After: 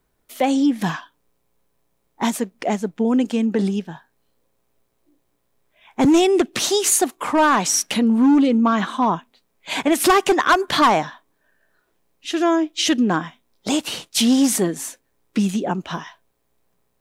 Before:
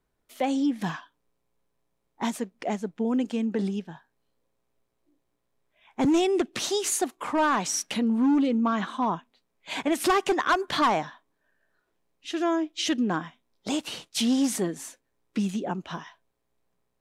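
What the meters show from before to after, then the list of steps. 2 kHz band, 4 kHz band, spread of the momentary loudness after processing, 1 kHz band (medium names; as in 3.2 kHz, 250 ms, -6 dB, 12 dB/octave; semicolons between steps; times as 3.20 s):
+7.5 dB, +8.0 dB, 12 LU, +7.5 dB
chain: treble shelf 11 kHz +8.5 dB; trim +7.5 dB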